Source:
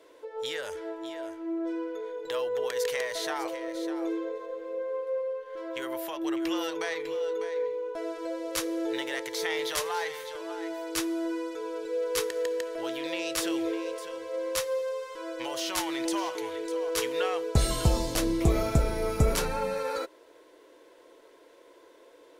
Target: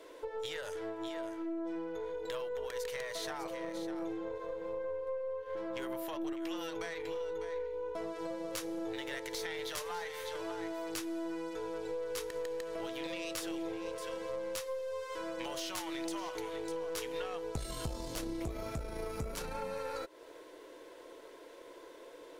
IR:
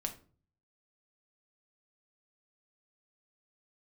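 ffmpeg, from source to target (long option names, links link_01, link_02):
-filter_complex "[0:a]asettb=1/sr,asplit=3[link_01][link_02][link_03];[link_01]atrim=end=4.844[link_04];[link_02]atrim=start=4.84:end=6.33,asetpts=PTS-STARTPTS,afade=type=in:duration=0.004:curve=qsin,afade=type=out:start_time=1.486:duration=0.004:curve=qsin,lowshelf=frequency=480:gain=6[link_05];[link_03]atrim=start=6.326[link_06];[link_04][link_05]acrossfade=duration=0.004:curve1=hsin:curve2=qsin[link_07];[link_07][link_06]acrossfade=duration=0.004:curve1=qsin:curve2=hsin,acompressor=threshold=-40dB:ratio=6,aeval=exprs='(tanh(44.7*val(0)+0.55)-tanh(0.55))/44.7':channel_layout=same,volume=5.5dB"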